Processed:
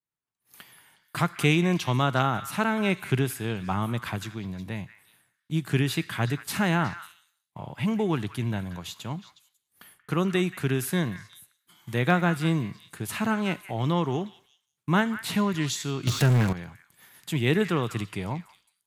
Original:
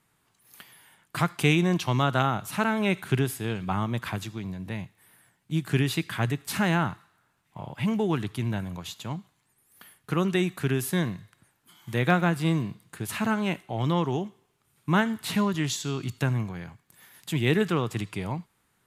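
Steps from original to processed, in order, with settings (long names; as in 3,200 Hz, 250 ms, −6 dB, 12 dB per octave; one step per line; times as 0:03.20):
downward expander −53 dBFS
echo through a band-pass that steps 182 ms, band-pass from 1,700 Hz, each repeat 1.4 octaves, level −10 dB
0:16.07–0:16.53: power curve on the samples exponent 0.5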